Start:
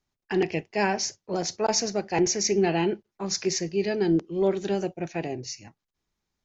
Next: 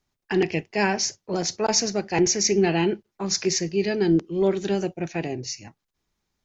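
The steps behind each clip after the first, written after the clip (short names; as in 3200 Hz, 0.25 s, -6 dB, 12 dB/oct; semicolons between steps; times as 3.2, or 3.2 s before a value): dynamic EQ 660 Hz, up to -4 dB, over -37 dBFS, Q 1; gain +4 dB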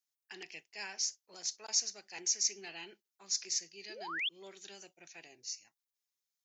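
painted sound rise, 3.89–4.29, 310–3600 Hz -19 dBFS; differentiator; gain -6.5 dB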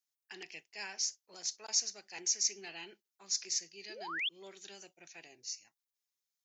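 nothing audible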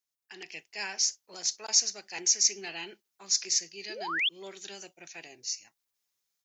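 AGC gain up to 7.5 dB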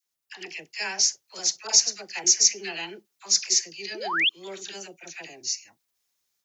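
dispersion lows, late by 59 ms, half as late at 920 Hz; gain +5.5 dB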